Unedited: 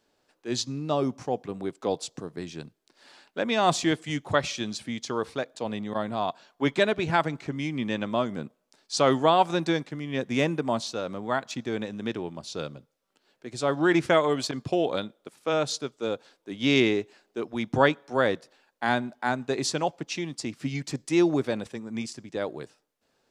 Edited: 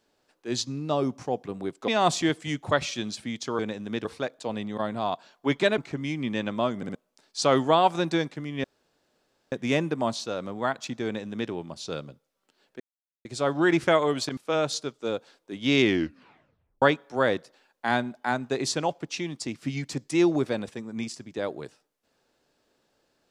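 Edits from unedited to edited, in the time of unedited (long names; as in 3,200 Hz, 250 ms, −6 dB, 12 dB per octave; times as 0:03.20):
0:01.88–0:03.50: remove
0:06.94–0:07.33: remove
0:08.32: stutter in place 0.06 s, 3 plays
0:10.19: splice in room tone 0.88 s
0:11.72–0:12.18: duplicate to 0:05.21
0:13.47: splice in silence 0.45 s
0:14.59–0:15.35: remove
0:16.80: tape stop 1.00 s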